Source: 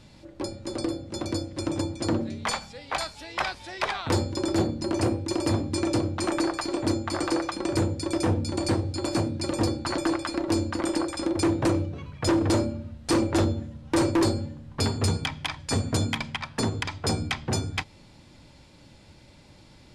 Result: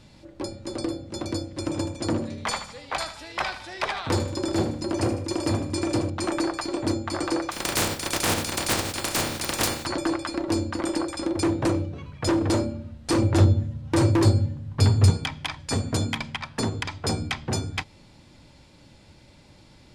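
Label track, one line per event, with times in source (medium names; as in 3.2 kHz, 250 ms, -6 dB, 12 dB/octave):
1.520000	6.100000	thinning echo 77 ms, feedback 47%, level -10 dB
7.500000	9.850000	spectral contrast reduction exponent 0.31
13.180000	15.100000	peaking EQ 110 Hz +13 dB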